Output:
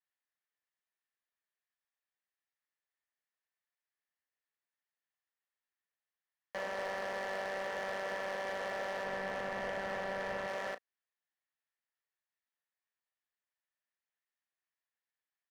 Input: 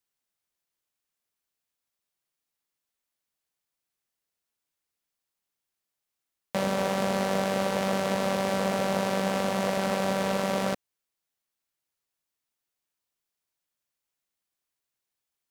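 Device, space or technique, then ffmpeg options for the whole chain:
megaphone: -filter_complex "[0:a]highpass=520,lowpass=3.1k,equalizer=f=1.8k:t=o:w=0.25:g=11,asoftclip=type=hard:threshold=-26.5dB,asplit=2[a][b];[b]adelay=34,volume=-12.5dB[c];[a][c]amix=inputs=2:normalize=0,asettb=1/sr,asplit=3[d][e][f];[d]atrim=end=9.044[g];[e]atrim=start=9.04:end=10.48,asetpts=PTS-STARTPTS,afade=t=in:d=0.004:c=qsin,afade=t=out:st=1.436:d=0.004:c=qsin,bass=f=250:g=8,treble=f=4k:g=-4[h];[f]atrim=start=10.476[i];[g][h]acrossfade=d=0.004:c1=hsin:c2=qsin[j];[j][i]acrossfade=d=0.004:c1=qsin:c2=hsin,volume=-7dB"

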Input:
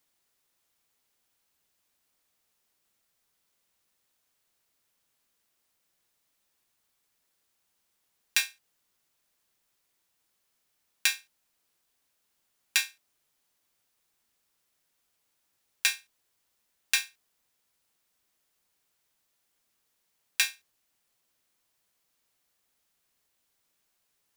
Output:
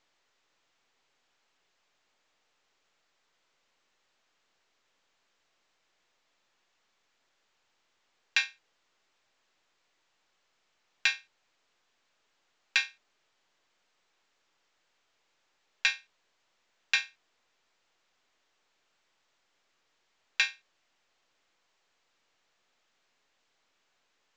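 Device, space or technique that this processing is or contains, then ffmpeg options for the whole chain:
telephone: -af "highpass=350,lowpass=3.6k,volume=2dB" -ar 16000 -c:a pcm_mulaw

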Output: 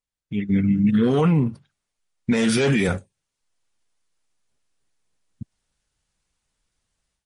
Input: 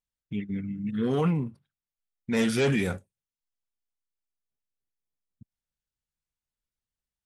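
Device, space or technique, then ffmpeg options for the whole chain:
low-bitrate web radio: -filter_complex "[0:a]asettb=1/sr,asplit=3[a][b][c];[a]atrim=end=2.314[d];[b]atrim=start=2.31:end=2.89,asetpts=PTS-STARTPTS,afade=t=in:d=0.004:c=qsin,afade=t=out:st=0.576:d=0.004:c=qsin,highpass=100[e];[c]atrim=start=2.886[f];[d][e]acrossfade=d=0.004:c1=hsin:c2=qsin[g];[g][f]acrossfade=d=0.004:c1=qsin:c2=hsin,dynaudnorm=f=340:g=3:m=15.5dB,alimiter=limit=-12dB:level=0:latency=1:release=152,volume=1.5dB" -ar 32000 -c:a libmp3lame -b:a 40k

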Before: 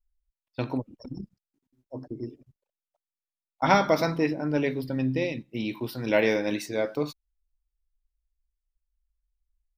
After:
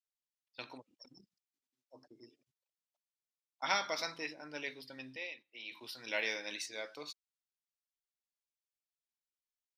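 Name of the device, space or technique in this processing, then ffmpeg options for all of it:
piezo pickup straight into a mixer: -filter_complex "[0:a]asettb=1/sr,asplit=3[a][b][c];[a]atrim=end=5.164[d];[b]atrim=start=5.16:end=5.72,asetpts=PTS-STARTPTS,afade=t=in:d=0.004:c=qsin,afade=t=out:st=0.556:d=0.004:c=qsin,acrossover=split=370 3500:gain=0.158 1 0.251[e][f][g];[e][f][g]amix=inputs=3:normalize=0[h];[c]atrim=start=5.716[i];[d][h]acrossfade=d=0.004:c1=hsin:c2=qsin[j];[j][i]acrossfade=d=0.004:c1=qsin:c2=hsin,lowpass=5.2k,aderivative,volume=4dB"

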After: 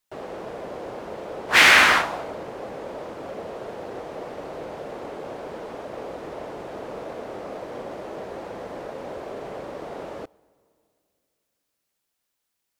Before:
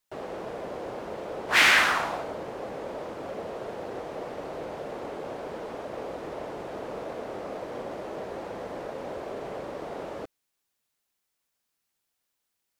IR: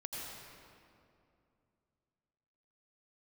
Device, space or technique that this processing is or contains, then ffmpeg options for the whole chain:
keyed gated reverb: -filter_complex "[0:a]asplit=3[a][b][c];[1:a]atrim=start_sample=2205[d];[b][d]afir=irnorm=-1:irlink=0[e];[c]apad=whole_len=564224[f];[e][f]sidechaingate=range=-25dB:threshold=-25dB:ratio=16:detection=peak,volume=0.5dB[g];[a][g]amix=inputs=2:normalize=0,volume=1dB"

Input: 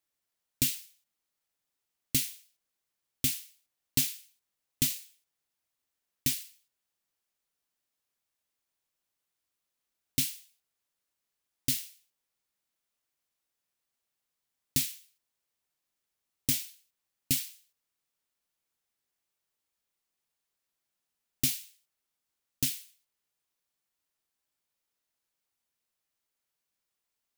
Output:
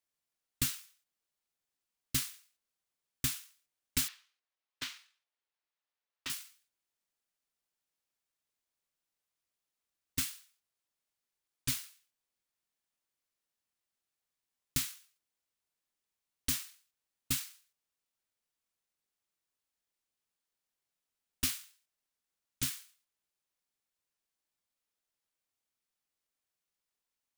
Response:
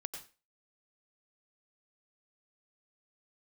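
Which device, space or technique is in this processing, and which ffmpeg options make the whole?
octave pedal: -filter_complex "[0:a]asplit=2[a][b];[b]asetrate=22050,aresample=44100,atempo=2,volume=-4dB[c];[a][c]amix=inputs=2:normalize=0,asettb=1/sr,asplit=3[d][e][f];[d]atrim=end=4.084[g];[e]atrim=start=4.08:end=6.3,asetpts=PTS-STARTPTS,afade=t=in:d=0.004:c=qsin,afade=t=out:st=2.216:d=0.004:c=qsin,acrossover=split=390 4800:gain=0.0891 1 0.1[h][i][j];[h][i][j]amix=inputs=3:normalize=0[k];[f]atrim=start=6.296[l];[g][k]acrossfade=d=0.004:c1=hsin:c2=qsin[m];[m][l]acrossfade=d=0.004:c1=qsin:c2=hsin,volume=-6dB"

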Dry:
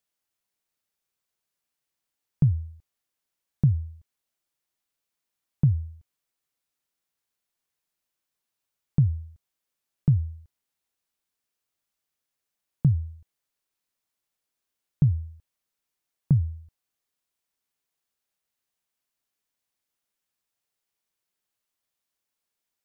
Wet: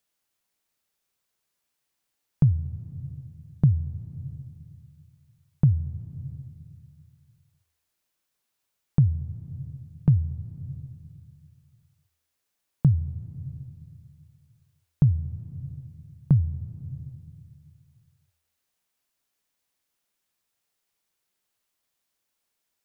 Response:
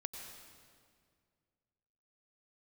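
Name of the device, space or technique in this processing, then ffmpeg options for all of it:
ducked reverb: -filter_complex "[0:a]asplit=3[a][b][c];[1:a]atrim=start_sample=2205[d];[b][d]afir=irnorm=-1:irlink=0[e];[c]apad=whole_len=1007664[f];[e][f]sidechaincompress=threshold=-32dB:ratio=3:attack=16:release=532,volume=0dB[g];[a][g]amix=inputs=2:normalize=0"

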